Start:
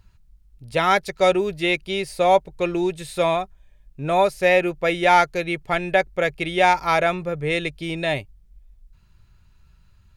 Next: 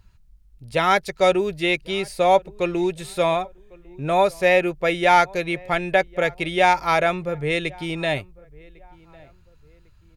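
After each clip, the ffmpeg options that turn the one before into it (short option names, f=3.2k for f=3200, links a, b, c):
-filter_complex "[0:a]asplit=2[a][b];[b]adelay=1101,lowpass=f=1.6k:p=1,volume=-24dB,asplit=2[c][d];[d]adelay=1101,lowpass=f=1.6k:p=1,volume=0.38[e];[a][c][e]amix=inputs=3:normalize=0"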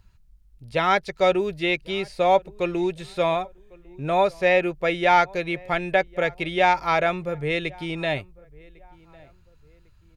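-filter_complex "[0:a]acrossover=split=5900[a][b];[b]acompressor=threshold=-56dB:ratio=4:attack=1:release=60[c];[a][c]amix=inputs=2:normalize=0,volume=-2dB"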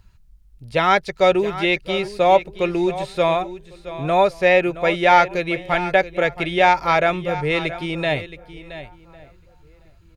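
-af "aecho=1:1:672:0.2,volume=4dB"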